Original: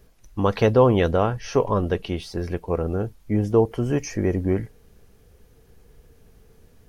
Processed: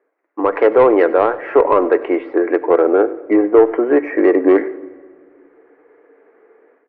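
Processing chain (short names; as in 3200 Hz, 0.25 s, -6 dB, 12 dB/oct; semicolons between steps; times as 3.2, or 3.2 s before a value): gate -41 dBFS, range -12 dB; Chebyshev band-pass 310–2100 Hz, order 4; in parallel at 0 dB: limiter -20 dBFS, peak gain reduction 13.5 dB; on the sum: AGC gain up to 14 dB; soft clip -5 dBFS, distortion -18 dB; echo 96 ms -19.5 dB; shoebox room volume 2500 m³, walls mixed, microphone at 0.33 m; gain +3 dB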